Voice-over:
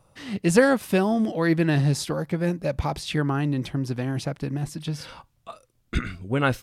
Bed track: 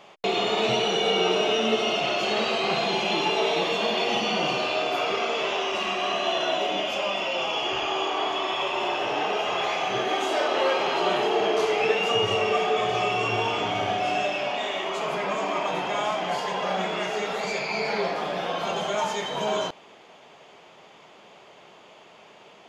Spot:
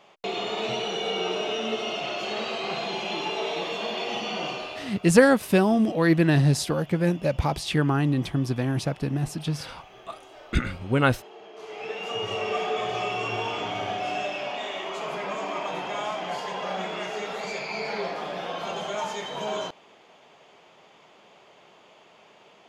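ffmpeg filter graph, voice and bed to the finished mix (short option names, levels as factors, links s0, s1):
-filter_complex "[0:a]adelay=4600,volume=1.19[s0];[1:a]volume=4.73,afade=t=out:st=4.45:d=0.54:silence=0.133352,afade=t=in:st=11.53:d=1.05:silence=0.112202[s1];[s0][s1]amix=inputs=2:normalize=0"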